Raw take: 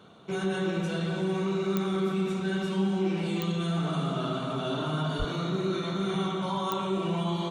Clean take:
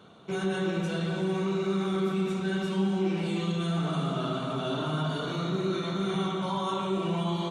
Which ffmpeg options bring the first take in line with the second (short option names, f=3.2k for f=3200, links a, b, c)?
-filter_complex "[0:a]adeclick=t=4,asplit=3[a][b][c];[a]afade=t=out:st=5.18:d=0.02[d];[b]highpass=f=140:w=0.5412,highpass=f=140:w=1.3066,afade=t=in:st=5.18:d=0.02,afade=t=out:st=5.3:d=0.02[e];[c]afade=t=in:st=5.3:d=0.02[f];[d][e][f]amix=inputs=3:normalize=0"